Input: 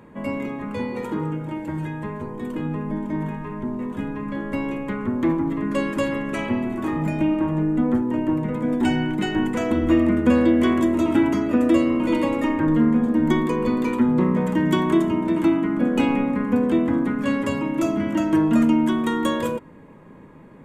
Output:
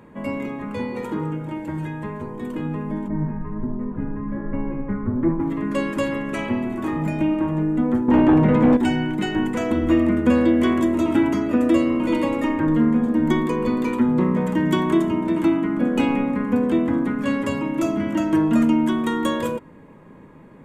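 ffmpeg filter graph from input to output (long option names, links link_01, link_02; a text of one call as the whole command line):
ffmpeg -i in.wav -filter_complex "[0:a]asettb=1/sr,asplit=3[link_01][link_02][link_03];[link_01]atrim=end=3.084[link_04];[link_02]atrim=start=3.08:end=5.4,asetpts=PTS-STARTPTS,afade=type=in:duration=0.004:curve=qsin,afade=type=out:start_time=2.316:duration=0.004:curve=qsin,lowpass=frequency=2000:width=0.5412,lowpass=frequency=2000:width=1.3066,aemphasis=mode=reproduction:type=bsi,flanger=delay=4.7:depth=5.9:regen=61:speed=1.3:shape=sinusoidal[link_05];[link_03]atrim=start=5.396[link_06];[link_04][link_05]acrossfade=duration=0.004:curve1=hsin:curve2=qsin[link_07];[link_07][link_06]acrossfade=duration=0.004:curve1=qsin:curve2=hsin,asettb=1/sr,asplit=3[link_08][link_09][link_10];[link_08]atrim=end=8.084[link_11];[link_09]atrim=start=8.08:end=8.77,asetpts=PTS-STARTPTS,afade=type=in:duration=0.004:curve=qsin,afade=type=out:start_time=0.686:duration=0.004:curve=qsin,aeval=exprs='0.316*sin(PI/2*2.24*val(0)/0.316)':channel_layout=same,lowpass=4900[link_12];[link_10]atrim=start=8.766[link_13];[link_11][link_12]acrossfade=duration=0.004:curve1=hsin:curve2=qsin[link_14];[link_14][link_13]acrossfade=duration=0.004:curve1=qsin:curve2=hsin" out.wav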